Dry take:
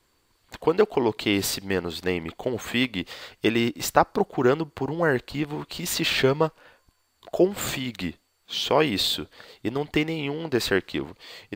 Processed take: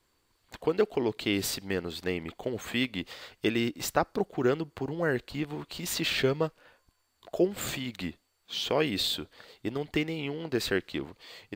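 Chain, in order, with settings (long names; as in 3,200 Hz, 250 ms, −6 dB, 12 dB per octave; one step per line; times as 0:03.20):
dynamic equaliser 940 Hz, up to −6 dB, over −39 dBFS, Q 1.8
level −5 dB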